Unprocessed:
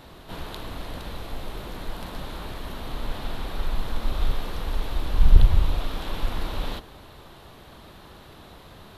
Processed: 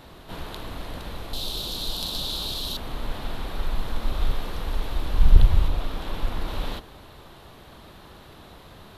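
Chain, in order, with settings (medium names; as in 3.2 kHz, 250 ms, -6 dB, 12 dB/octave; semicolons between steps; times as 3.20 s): 1.33–2.77 s: resonant high shelf 2.8 kHz +11.5 dB, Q 3; 5.68–6.48 s: tape noise reduction on one side only decoder only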